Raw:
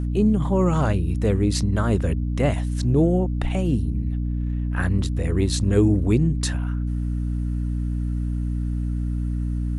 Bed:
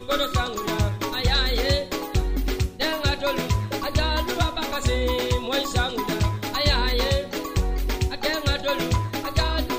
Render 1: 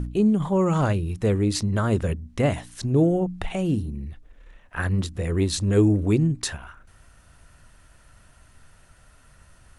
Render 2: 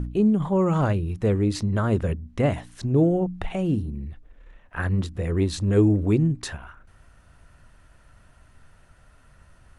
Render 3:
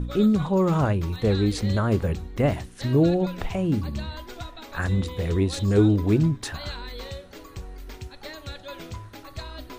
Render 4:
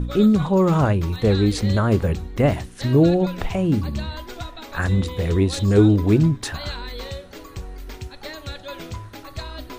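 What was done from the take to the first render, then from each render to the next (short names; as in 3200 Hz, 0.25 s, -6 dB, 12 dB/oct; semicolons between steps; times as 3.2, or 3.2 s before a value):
de-hum 60 Hz, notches 5
high shelf 3700 Hz -9 dB
add bed -14.5 dB
gain +4 dB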